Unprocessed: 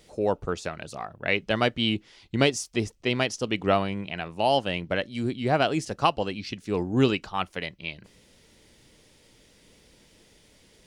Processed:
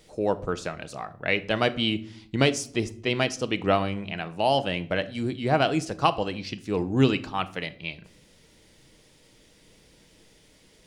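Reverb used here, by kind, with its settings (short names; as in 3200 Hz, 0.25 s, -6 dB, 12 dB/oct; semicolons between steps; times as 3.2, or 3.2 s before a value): shoebox room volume 860 m³, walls furnished, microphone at 0.58 m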